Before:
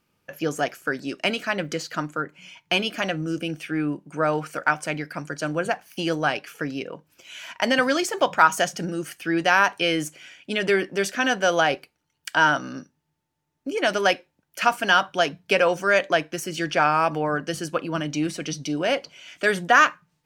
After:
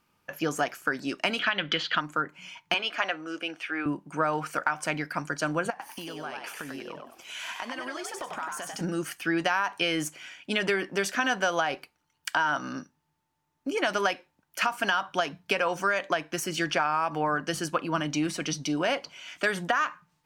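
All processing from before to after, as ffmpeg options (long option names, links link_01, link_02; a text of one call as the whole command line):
ffmpeg -i in.wav -filter_complex "[0:a]asettb=1/sr,asplit=3[link_01][link_02][link_03];[link_01]atrim=end=1.394[link_04];[link_02]atrim=start=1.39:end=2.01,asetpts=PTS-STARTPTS,afade=type=in:duration=0.004:curve=qsin,afade=type=out:start_time=0.616:duration=0.004:curve=qsin,lowpass=frequency=3300:width_type=q:width=8.7,equalizer=frequency=1600:width_type=o:width=0.86:gain=5.5[link_05];[link_03]atrim=start=2.006[link_06];[link_04][link_05]acrossfade=duration=0.004:curve1=hsin:curve2=qsin[link_07];[link_07][link_06]acrossfade=duration=0.004:curve1=qsin:curve2=hsin,asettb=1/sr,asplit=3[link_08][link_09][link_10];[link_08]atrim=end=2.744[link_11];[link_09]atrim=start=2.74:end=3.86,asetpts=PTS-STARTPTS,afade=type=in:duration=0.004:curve=qsin,afade=type=out:start_time=1.116:duration=0.004:curve=qsin,highpass=310,lowpass=2400,aemphasis=mode=production:type=riaa[link_12];[link_10]atrim=start=3.856[link_13];[link_11][link_12]acrossfade=duration=0.004:curve1=hsin:curve2=qsin[link_14];[link_14][link_13]acrossfade=duration=0.004:curve1=qsin:curve2=hsin,asettb=1/sr,asplit=3[link_15][link_16][link_17];[link_15]atrim=end=5.704[link_18];[link_16]atrim=start=5.7:end=8.81,asetpts=PTS-STARTPTS,afade=type=in:duration=0.004:curve=qsin,afade=type=out:start_time=3.106:duration=0.004:curve=qsin,equalizer=frequency=9300:width_type=o:width=0.28:gain=6,acompressor=threshold=-34dB:ratio=12:attack=3.2:release=140:knee=1:detection=peak,asplit=5[link_19][link_20][link_21][link_22][link_23];[link_20]adelay=96,afreqshift=91,volume=-3.5dB[link_24];[link_21]adelay=192,afreqshift=182,volume=-13.7dB[link_25];[link_22]adelay=288,afreqshift=273,volume=-23.8dB[link_26];[link_23]adelay=384,afreqshift=364,volume=-34dB[link_27];[link_19][link_24][link_25][link_26][link_27]amix=inputs=5:normalize=0,atrim=end_sample=137151[link_28];[link_17]atrim=start=8.806[link_29];[link_18][link_28]acrossfade=duration=0.004:curve1=hsin:curve2=qsin[link_30];[link_30][link_29]acrossfade=duration=0.004:curve1=qsin:curve2=hsin,equalizer=frequency=125:width_type=o:width=1:gain=-3,equalizer=frequency=500:width_type=o:width=1:gain=-4,equalizer=frequency=1000:width_type=o:width=1:gain=6,alimiter=limit=-8.5dB:level=0:latency=1:release=138,acompressor=threshold=-22dB:ratio=6" out.wav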